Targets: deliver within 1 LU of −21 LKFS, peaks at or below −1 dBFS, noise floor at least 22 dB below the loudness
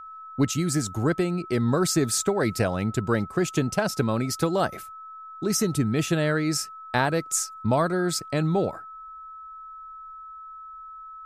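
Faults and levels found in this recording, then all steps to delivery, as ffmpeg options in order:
interfering tone 1,300 Hz; level of the tone −39 dBFS; integrated loudness −25.0 LKFS; sample peak −8.5 dBFS; target loudness −21.0 LKFS
→ -af "bandreject=frequency=1300:width=30"
-af "volume=4dB"

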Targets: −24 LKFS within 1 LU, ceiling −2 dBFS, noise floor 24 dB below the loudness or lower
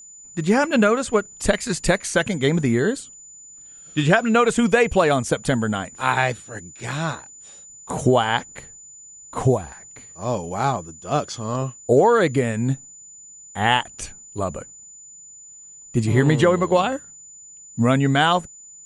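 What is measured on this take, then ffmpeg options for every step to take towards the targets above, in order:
interfering tone 7,000 Hz; level of the tone −41 dBFS; integrated loudness −21.0 LKFS; sample peak −3.5 dBFS; target loudness −24.0 LKFS
→ -af "bandreject=frequency=7000:width=30"
-af "volume=-3dB"

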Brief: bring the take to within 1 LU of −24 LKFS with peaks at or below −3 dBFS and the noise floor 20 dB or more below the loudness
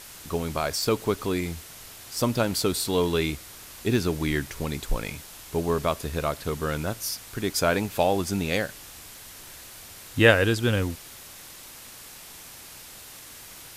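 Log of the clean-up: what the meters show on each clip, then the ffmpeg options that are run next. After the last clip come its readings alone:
background noise floor −45 dBFS; target noise floor −46 dBFS; integrated loudness −26.0 LKFS; sample peak −3.5 dBFS; target loudness −24.0 LKFS
→ -af "afftdn=noise_reduction=6:noise_floor=-45"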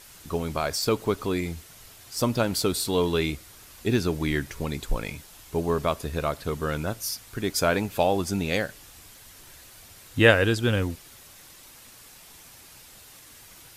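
background noise floor −50 dBFS; integrated loudness −26.5 LKFS; sample peak −4.0 dBFS; target loudness −24.0 LKFS
→ -af "volume=2.5dB,alimiter=limit=-3dB:level=0:latency=1"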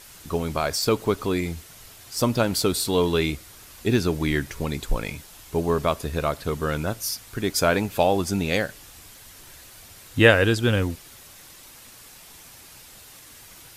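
integrated loudness −24.0 LKFS; sample peak −3.0 dBFS; background noise floor −47 dBFS

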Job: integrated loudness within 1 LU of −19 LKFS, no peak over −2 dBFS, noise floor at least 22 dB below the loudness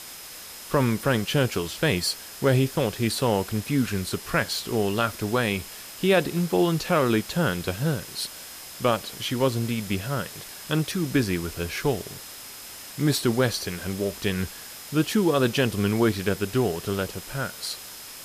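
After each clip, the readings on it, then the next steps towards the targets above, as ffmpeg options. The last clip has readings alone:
interfering tone 5,100 Hz; level of the tone −48 dBFS; background noise floor −41 dBFS; target noise floor −48 dBFS; integrated loudness −25.5 LKFS; sample peak −10.0 dBFS; target loudness −19.0 LKFS
→ -af "bandreject=frequency=5100:width=30"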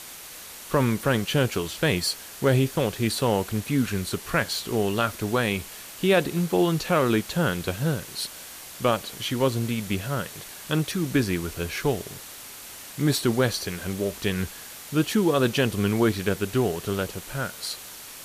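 interfering tone none found; background noise floor −42 dBFS; target noise floor −48 dBFS
→ -af "afftdn=noise_reduction=6:noise_floor=-42"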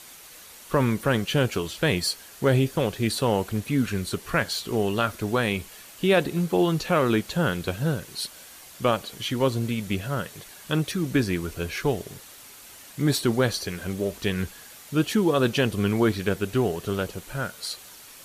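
background noise floor −47 dBFS; target noise floor −48 dBFS
→ -af "afftdn=noise_reduction=6:noise_floor=-47"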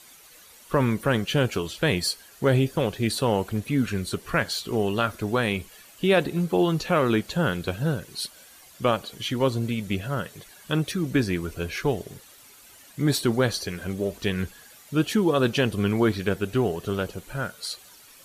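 background noise floor −51 dBFS; integrated loudness −25.5 LKFS; sample peak −10.0 dBFS; target loudness −19.0 LKFS
→ -af "volume=6.5dB"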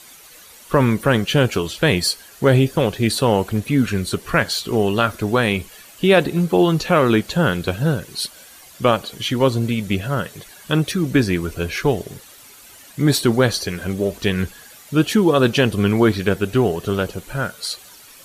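integrated loudness −19.0 LKFS; sample peak −3.5 dBFS; background noise floor −44 dBFS

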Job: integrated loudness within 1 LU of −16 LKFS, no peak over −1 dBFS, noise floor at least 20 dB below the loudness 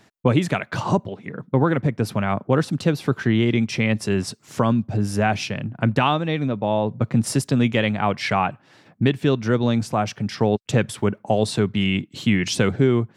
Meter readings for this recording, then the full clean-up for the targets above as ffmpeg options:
integrated loudness −22.0 LKFS; sample peak −5.5 dBFS; target loudness −16.0 LKFS
→ -af "volume=6dB,alimiter=limit=-1dB:level=0:latency=1"

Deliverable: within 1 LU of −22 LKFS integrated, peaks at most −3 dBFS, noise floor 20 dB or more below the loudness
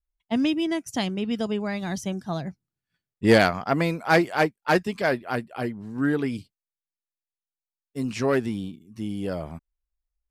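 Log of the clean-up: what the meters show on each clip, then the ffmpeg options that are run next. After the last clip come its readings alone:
integrated loudness −25.5 LKFS; sample peak −4.5 dBFS; target loudness −22.0 LKFS
→ -af "volume=3.5dB,alimiter=limit=-3dB:level=0:latency=1"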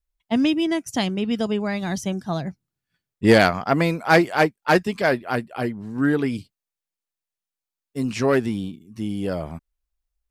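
integrated loudness −22.0 LKFS; sample peak −3.0 dBFS; background noise floor −89 dBFS

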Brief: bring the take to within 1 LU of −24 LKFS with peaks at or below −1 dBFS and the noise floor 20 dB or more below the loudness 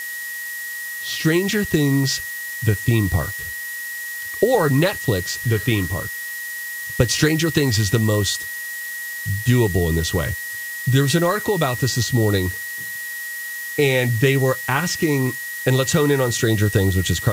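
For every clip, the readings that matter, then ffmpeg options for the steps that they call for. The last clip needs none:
interfering tone 1,900 Hz; level of the tone −28 dBFS; background noise floor −30 dBFS; target noise floor −41 dBFS; integrated loudness −20.5 LKFS; sample peak −2.5 dBFS; target loudness −24.0 LKFS
→ -af "bandreject=frequency=1900:width=30"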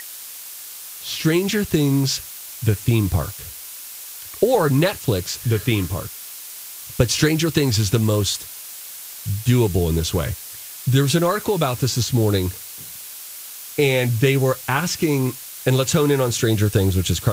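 interfering tone none found; background noise floor −36 dBFS; target noise floor −40 dBFS
→ -af "afftdn=noise_reduction=6:noise_floor=-36"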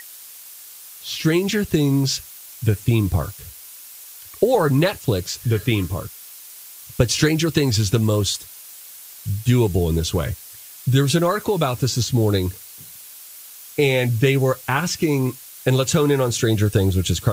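background noise floor −41 dBFS; integrated loudness −20.0 LKFS; sample peak −3.0 dBFS; target loudness −24.0 LKFS
→ -af "volume=-4dB"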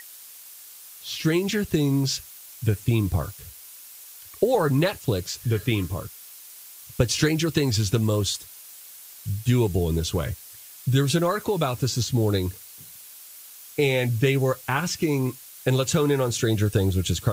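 integrated loudness −24.0 LKFS; sample peak −7.0 dBFS; background noise floor −45 dBFS

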